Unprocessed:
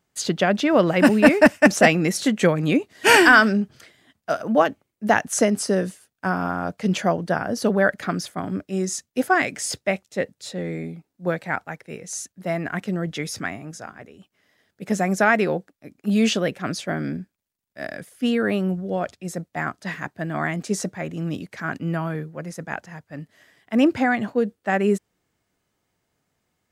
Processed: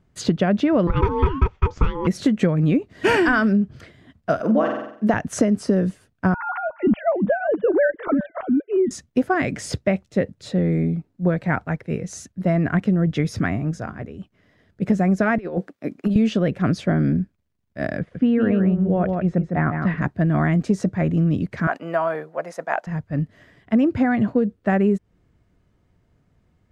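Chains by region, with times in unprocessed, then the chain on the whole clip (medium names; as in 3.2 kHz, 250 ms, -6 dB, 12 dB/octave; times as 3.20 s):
0.87–2.07 s: steep low-pass 6.6 kHz 48 dB/octave + treble shelf 4.2 kHz -8.5 dB + ring modulator 680 Hz
4.39–5.14 s: high-pass 220 Hz + flutter echo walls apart 7.9 m, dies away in 0.53 s
6.34–8.91 s: formants replaced by sine waves + distance through air 250 m + delay 356 ms -21 dB
15.38–16.16 s: high-pass 280 Hz + compressor with a negative ratio -30 dBFS, ratio -0.5
17.99–20.02 s: low-pass 2.6 kHz + delay 155 ms -7 dB
21.67–22.87 s: resonant high-pass 710 Hz, resonance Q 2.5 + treble shelf 8.9 kHz +4 dB
whole clip: RIAA curve playback; band-stop 820 Hz, Q 12; compression 6:1, threshold -20 dBFS; trim +4.5 dB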